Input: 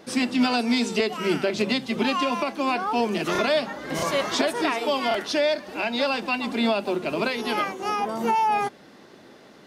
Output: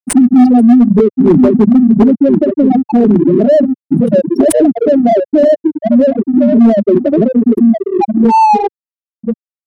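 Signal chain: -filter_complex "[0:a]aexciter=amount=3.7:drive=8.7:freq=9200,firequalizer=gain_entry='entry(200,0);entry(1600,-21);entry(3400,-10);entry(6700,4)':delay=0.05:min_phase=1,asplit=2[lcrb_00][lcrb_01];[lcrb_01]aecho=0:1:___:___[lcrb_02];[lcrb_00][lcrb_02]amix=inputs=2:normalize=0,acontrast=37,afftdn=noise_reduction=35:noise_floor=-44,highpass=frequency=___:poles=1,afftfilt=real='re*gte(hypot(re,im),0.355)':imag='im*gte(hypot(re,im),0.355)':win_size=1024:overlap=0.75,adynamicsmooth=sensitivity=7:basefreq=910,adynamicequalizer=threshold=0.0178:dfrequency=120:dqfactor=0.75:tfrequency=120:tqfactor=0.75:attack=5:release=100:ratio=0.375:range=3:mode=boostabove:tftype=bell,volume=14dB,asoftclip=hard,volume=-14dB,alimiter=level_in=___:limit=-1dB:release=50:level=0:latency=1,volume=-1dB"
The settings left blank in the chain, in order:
1032, 0.447, 79, 20.5dB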